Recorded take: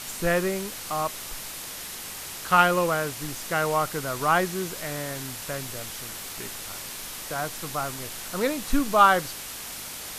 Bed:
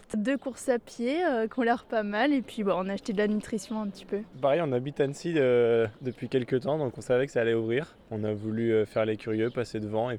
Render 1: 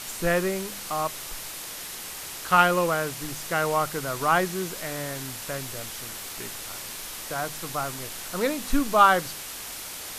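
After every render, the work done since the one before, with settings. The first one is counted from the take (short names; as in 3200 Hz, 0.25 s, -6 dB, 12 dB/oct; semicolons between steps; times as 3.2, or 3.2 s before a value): de-hum 50 Hz, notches 5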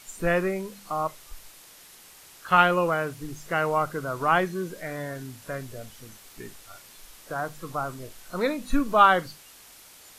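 noise print and reduce 13 dB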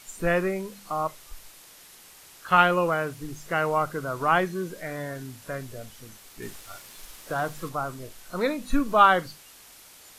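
6.42–7.69 sample leveller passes 1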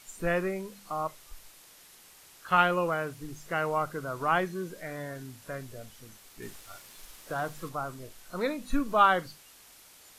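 gain -4.5 dB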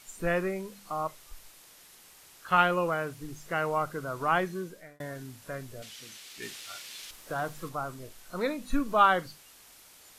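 4.57–5 fade out; 5.82–7.11 weighting filter D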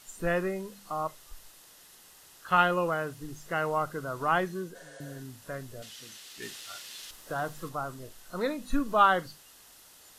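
notch 2300 Hz, Q 8.2; 4.78–5.14 spectral repair 420–10000 Hz after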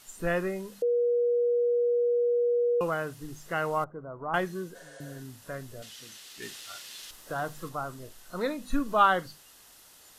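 0.82–2.81 bleep 480 Hz -22 dBFS; 3.84–4.34 ladder low-pass 1200 Hz, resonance 20%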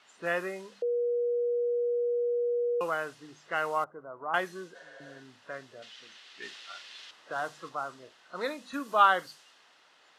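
low-pass opened by the level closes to 2700 Hz, open at -25 dBFS; weighting filter A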